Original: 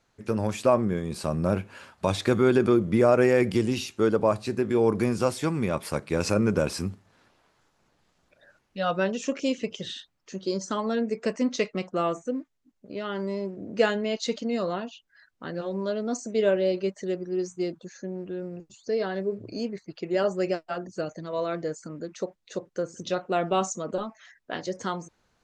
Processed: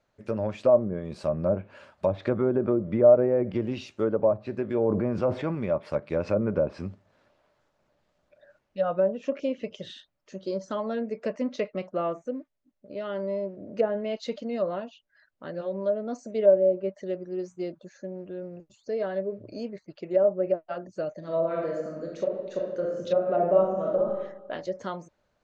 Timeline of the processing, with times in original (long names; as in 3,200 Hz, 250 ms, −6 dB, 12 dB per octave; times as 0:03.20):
0:04.83–0:05.55: level that may fall only so fast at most 26 dB per second
0:21.18–0:24.03: thrown reverb, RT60 1 s, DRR −2 dB
whole clip: parametric band 590 Hz +13 dB 0.23 octaves; treble cut that deepens with the level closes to 860 Hz, closed at −15 dBFS; high-shelf EQ 6,400 Hz −11.5 dB; level −4.5 dB